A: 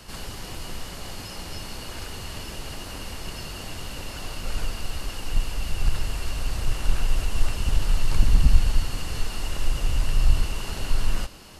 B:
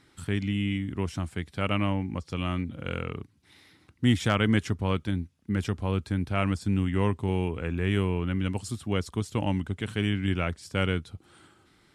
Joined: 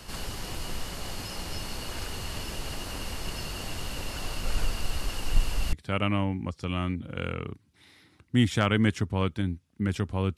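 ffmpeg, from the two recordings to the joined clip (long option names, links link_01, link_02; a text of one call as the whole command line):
ffmpeg -i cue0.wav -i cue1.wav -filter_complex "[0:a]apad=whole_dur=10.37,atrim=end=10.37,atrim=end=5.732[link_01];[1:a]atrim=start=1.418:end=6.06[link_02];[link_01][link_02]acrossfade=duration=0.004:curve1=hsin:curve2=hsin" out.wav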